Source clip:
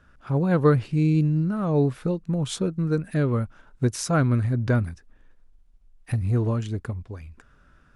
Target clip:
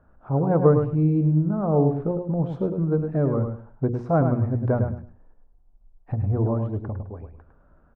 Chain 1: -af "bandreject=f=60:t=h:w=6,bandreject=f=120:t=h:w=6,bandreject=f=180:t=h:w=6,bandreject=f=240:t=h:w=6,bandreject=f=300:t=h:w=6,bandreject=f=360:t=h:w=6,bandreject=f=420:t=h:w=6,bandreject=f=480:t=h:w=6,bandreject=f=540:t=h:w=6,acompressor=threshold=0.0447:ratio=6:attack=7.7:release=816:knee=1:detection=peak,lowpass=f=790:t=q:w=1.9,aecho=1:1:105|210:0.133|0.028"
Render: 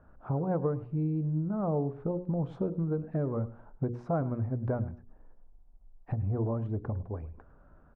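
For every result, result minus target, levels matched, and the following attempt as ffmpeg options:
compression: peak gain reduction +14.5 dB; echo-to-direct -10.5 dB
-af "lowpass=f=790:t=q:w=1.9,bandreject=f=60:t=h:w=6,bandreject=f=120:t=h:w=6,bandreject=f=180:t=h:w=6,bandreject=f=240:t=h:w=6,bandreject=f=300:t=h:w=6,bandreject=f=360:t=h:w=6,bandreject=f=420:t=h:w=6,bandreject=f=480:t=h:w=6,bandreject=f=540:t=h:w=6,aecho=1:1:105|210:0.133|0.028"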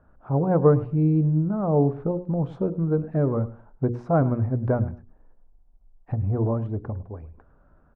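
echo-to-direct -10.5 dB
-af "lowpass=f=790:t=q:w=1.9,bandreject=f=60:t=h:w=6,bandreject=f=120:t=h:w=6,bandreject=f=180:t=h:w=6,bandreject=f=240:t=h:w=6,bandreject=f=300:t=h:w=6,bandreject=f=360:t=h:w=6,bandreject=f=420:t=h:w=6,bandreject=f=480:t=h:w=6,bandreject=f=540:t=h:w=6,aecho=1:1:105|210|315:0.447|0.0938|0.0197"

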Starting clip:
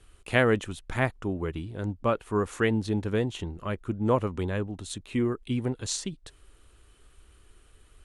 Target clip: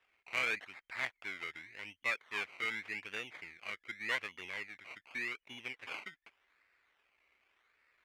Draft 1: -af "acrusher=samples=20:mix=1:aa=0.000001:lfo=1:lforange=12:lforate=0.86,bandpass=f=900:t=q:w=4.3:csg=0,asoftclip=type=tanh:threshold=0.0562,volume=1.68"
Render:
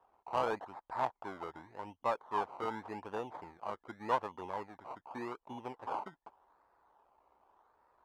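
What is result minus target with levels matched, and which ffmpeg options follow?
1 kHz band +12.5 dB
-af "acrusher=samples=20:mix=1:aa=0.000001:lfo=1:lforange=12:lforate=0.86,bandpass=f=2200:t=q:w=4.3:csg=0,asoftclip=type=tanh:threshold=0.0562,volume=1.68"

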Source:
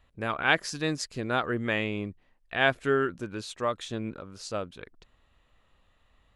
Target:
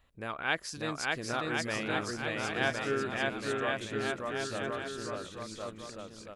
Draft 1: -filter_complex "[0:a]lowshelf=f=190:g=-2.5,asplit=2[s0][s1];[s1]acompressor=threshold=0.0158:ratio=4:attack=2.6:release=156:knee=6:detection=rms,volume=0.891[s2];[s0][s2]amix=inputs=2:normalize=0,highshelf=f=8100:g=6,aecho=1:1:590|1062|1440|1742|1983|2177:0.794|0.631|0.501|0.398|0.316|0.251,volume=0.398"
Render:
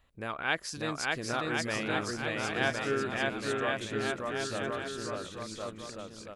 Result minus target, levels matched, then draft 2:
compression: peak gain reduction -8 dB
-filter_complex "[0:a]lowshelf=f=190:g=-2.5,asplit=2[s0][s1];[s1]acompressor=threshold=0.00447:ratio=4:attack=2.6:release=156:knee=6:detection=rms,volume=0.891[s2];[s0][s2]amix=inputs=2:normalize=0,highshelf=f=8100:g=6,aecho=1:1:590|1062|1440|1742|1983|2177:0.794|0.631|0.501|0.398|0.316|0.251,volume=0.398"

